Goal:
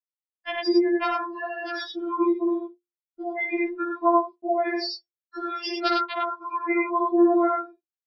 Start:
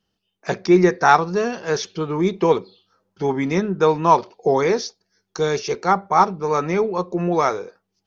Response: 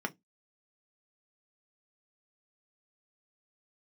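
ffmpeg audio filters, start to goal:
-filter_complex "[0:a]acompressor=threshold=-26dB:ratio=16,aeval=exprs='(mod(6.31*val(0)+1,2)-1)/6.31':channel_layout=same,agate=range=-43dB:threshold=-37dB:ratio=16:detection=peak,highshelf=frequency=3800:gain=-6.5,bandreject=frequency=50:width_type=h:width=6,bandreject=frequency=100:width_type=h:width=6,bandreject=frequency=150:width_type=h:width=6,bandreject=frequency=200:width_type=h:width=6,bandreject=frequency=250:width_type=h:width=6,bandreject=frequency=300:width_type=h:width=6,bandreject=frequency=350:width_type=h:width=6,bandreject=frequency=400:width_type=h:width=6,bandreject=frequency=450:width_type=h:width=6,bandreject=frequency=500:width_type=h:width=6,aecho=1:1:61.22|96.21:0.631|0.794,asplit=2[link_01][link_02];[1:a]atrim=start_sample=2205,adelay=53[link_03];[link_02][link_03]afir=irnorm=-1:irlink=0,volume=-19.5dB[link_04];[link_01][link_04]amix=inputs=2:normalize=0,afftdn=noise_reduction=32:noise_floor=-38,dynaudnorm=framelen=110:gausssize=11:maxgain=8dB,aresample=11025,aresample=44100,aemphasis=mode=production:type=riaa,afftfilt=real='re*4*eq(mod(b,16),0)':imag='im*4*eq(mod(b,16),0)':win_size=2048:overlap=0.75,volume=1dB"

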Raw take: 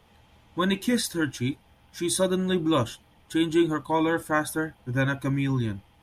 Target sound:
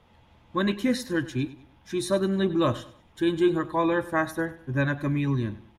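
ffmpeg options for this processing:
ffmpeg -i in.wav -filter_complex "[0:a]lowpass=frequency=2800:poles=1,asplit=2[link_01][link_02];[link_02]aecho=0:1:103|206|309:0.141|0.0509|0.0183[link_03];[link_01][link_03]amix=inputs=2:normalize=0,asetrate=45938,aresample=44100" out.wav

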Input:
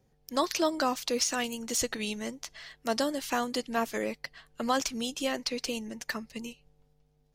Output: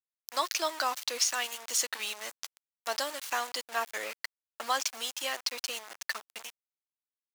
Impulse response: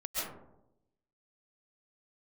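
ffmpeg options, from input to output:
-af "aeval=exprs='val(0)*gte(abs(val(0)),0.0168)':channel_layout=same,highpass=860,volume=1.5dB"

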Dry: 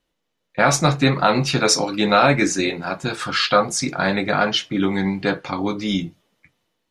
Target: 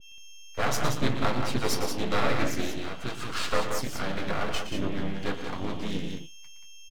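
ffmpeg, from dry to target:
ffmpeg -i in.wav -filter_complex "[0:a]aeval=exprs='val(0)+0.0158*sin(2*PI*3200*n/s)':channel_layout=same,aeval=exprs='max(val(0),0)':channel_layout=same,asplit=2[link_01][link_02];[link_02]asetrate=37084,aresample=44100,atempo=1.18921,volume=-4dB[link_03];[link_01][link_03]amix=inputs=2:normalize=0,asplit=2[link_04][link_05];[link_05]aecho=0:1:116.6|180.8:0.316|0.501[link_06];[link_04][link_06]amix=inputs=2:normalize=0,adynamicequalizer=threshold=0.0251:dfrequency=1500:dqfactor=0.7:tfrequency=1500:tqfactor=0.7:attack=5:release=100:ratio=0.375:range=1.5:mode=cutabove:tftype=highshelf,volume=-8dB" out.wav

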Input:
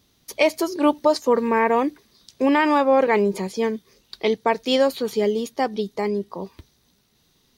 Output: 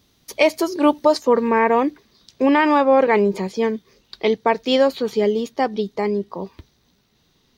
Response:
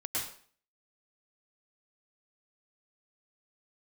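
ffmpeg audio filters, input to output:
-af "asetnsamples=nb_out_samples=441:pad=0,asendcmd='1.23 equalizer g -12',equalizer=frequency=11000:width_type=o:width=1.1:gain=-3.5,volume=2.5dB"

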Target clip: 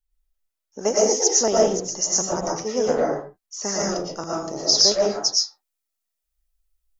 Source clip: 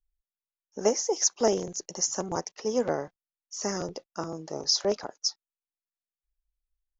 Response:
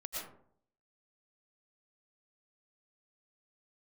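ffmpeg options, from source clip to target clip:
-filter_complex "[0:a]asetnsamples=nb_out_samples=441:pad=0,asendcmd='3.68 highshelf g 8.5',highshelf=frequency=4400:gain=3.5[link_01];[1:a]atrim=start_sample=2205,afade=type=out:start_time=0.33:duration=0.01,atrim=end_sample=14994[link_02];[link_01][link_02]afir=irnorm=-1:irlink=0,volume=6.5dB"

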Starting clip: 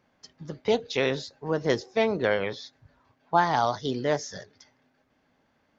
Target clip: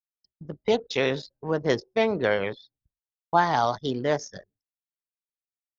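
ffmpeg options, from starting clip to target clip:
ffmpeg -i in.wav -af "anlmdn=1.58,agate=range=-33dB:threshold=-56dB:ratio=3:detection=peak,volume=1dB" out.wav

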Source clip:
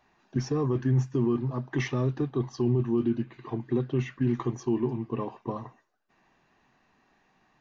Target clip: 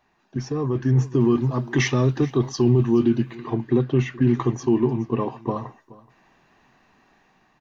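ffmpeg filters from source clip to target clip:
ffmpeg -i in.wav -filter_complex "[0:a]asettb=1/sr,asplit=3[link_01][link_02][link_03];[link_01]atrim=end=1.204[link_04];[link_02]atrim=start=1.2:end=3.35,asetpts=PTS-STARTPTS,afade=type=in:duration=0.004:curve=qsin,afade=type=out:start_time=2.146:duration=0.004:curve=qsin,highshelf=frequency=3500:gain=9[link_05];[link_03]atrim=start=3.346[link_06];[link_04][link_05]acrossfade=duration=0.004:curve1=hsin:curve2=qsin[link_07];[link_07][link_06]acrossfade=duration=0.004:curve1=qsin:curve2=hsin,aecho=1:1:425:0.0891,dynaudnorm=framelen=190:gausssize=9:maxgain=7.5dB" out.wav

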